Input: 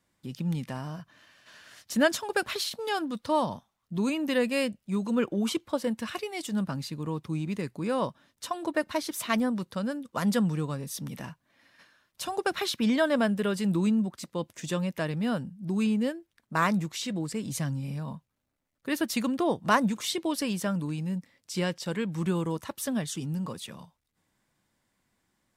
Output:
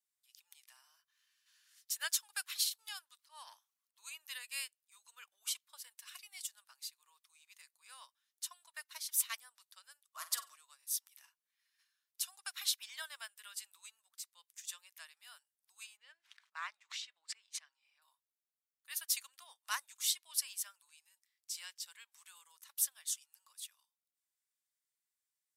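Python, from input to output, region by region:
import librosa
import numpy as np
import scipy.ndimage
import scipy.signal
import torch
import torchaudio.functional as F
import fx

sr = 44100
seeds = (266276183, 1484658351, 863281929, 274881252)

y = fx.chain(x, sr, fx.transient(attack_db=-8, sustain_db=10),
    fx.high_shelf(hz=3800.0, db=-5.0),
    fx.notch(hz=3600.0, q=13.0), at=(3.17, 3.98))
y = fx.chain(y, sr, fx.transient(attack_db=-7, sustain_db=2),
    fx.small_body(hz=(320.0, 610.0, 1100.0), ring_ms=35, db=17),
    fx.room_flutter(wall_m=8.1, rt60_s=0.34), at=(10.12, 10.56))
y = fx.chain(y, sr, fx.lowpass(hz=3000.0, slope=12),
    fx.sustainer(db_per_s=49.0), at=(15.97, 18.02))
y = scipy.signal.sosfilt(scipy.signal.butter(4, 930.0, 'highpass', fs=sr, output='sos'), y)
y = np.diff(y, prepend=0.0)
y = fx.upward_expand(y, sr, threshold_db=-58.0, expansion=1.5)
y = y * 10.0 ** (3.0 / 20.0)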